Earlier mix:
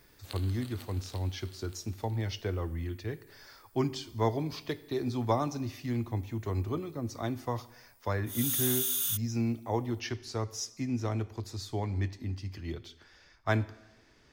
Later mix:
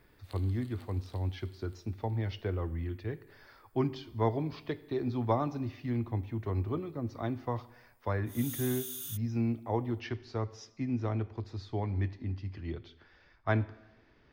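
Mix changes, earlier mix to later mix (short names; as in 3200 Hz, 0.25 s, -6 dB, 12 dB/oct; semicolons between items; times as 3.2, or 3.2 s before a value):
speech: add air absorption 260 m; background -10.5 dB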